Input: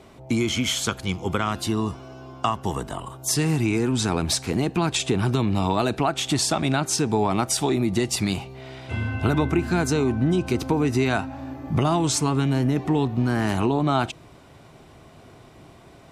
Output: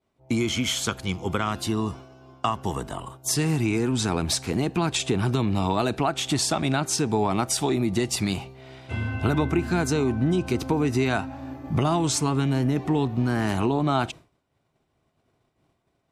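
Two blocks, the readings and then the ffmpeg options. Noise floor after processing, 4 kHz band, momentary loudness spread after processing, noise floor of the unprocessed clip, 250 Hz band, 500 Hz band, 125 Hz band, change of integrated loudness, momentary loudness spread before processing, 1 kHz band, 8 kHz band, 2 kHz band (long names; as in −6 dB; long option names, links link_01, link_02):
−73 dBFS, −1.5 dB, 8 LU, −49 dBFS, −1.5 dB, −1.5 dB, −1.5 dB, −1.5 dB, 8 LU, −1.5 dB, −1.5 dB, −1.5 dB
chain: -af "agate=range=-33dB:threshold=-34dB:ratio=3:detection=peak,volume=-1.5dB"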